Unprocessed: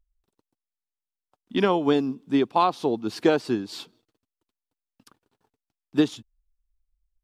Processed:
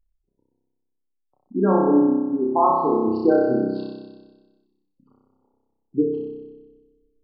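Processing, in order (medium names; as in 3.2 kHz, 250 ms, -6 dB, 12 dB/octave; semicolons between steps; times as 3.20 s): local Wiener filter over 25 samples; spectral gate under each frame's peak -15 dB strong; flutter echo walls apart 5.3 m, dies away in 1.3 s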